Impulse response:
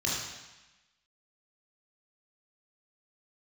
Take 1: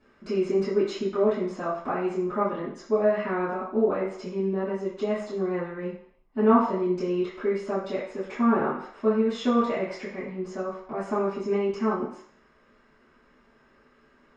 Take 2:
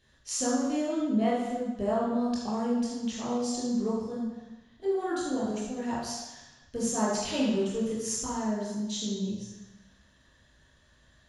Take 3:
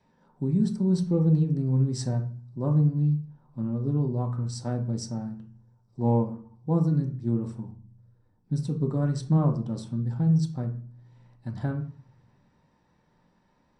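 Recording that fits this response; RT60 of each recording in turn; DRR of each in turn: 2; 0.65 s, 1.0 s, 0.45 s; -14.5 dB, -5.5 dB, 3.0 dB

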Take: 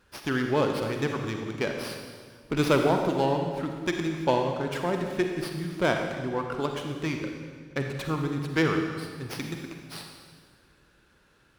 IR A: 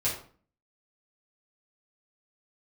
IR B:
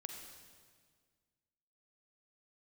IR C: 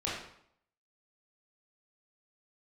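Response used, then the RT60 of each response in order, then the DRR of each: B; 0.45 s, 1.8 s, 0.65 s; -8.5 dB, 3.0 dB, -7.0 dB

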